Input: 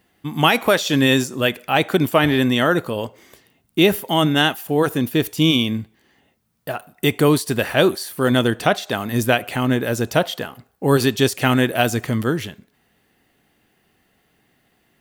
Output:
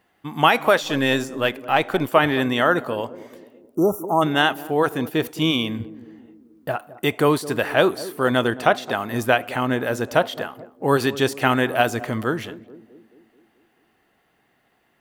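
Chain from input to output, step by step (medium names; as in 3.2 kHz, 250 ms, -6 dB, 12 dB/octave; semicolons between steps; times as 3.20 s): 0.83–2.09 s: partial rectifier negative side -3 dB; 5.80–6.76 s: bass shelf 240 Hz +10.5 dB; on a send: band-passed feedback delay 216 ms, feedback 59%, band-pass 310 Hz, level -14 dB; 3.76–4.22 s: on the sum: spectral selection erased 1.4–5.4 kHz; peaking EQ 1 kHz +9.5 dB 2.7 oct; trim -7.5 dB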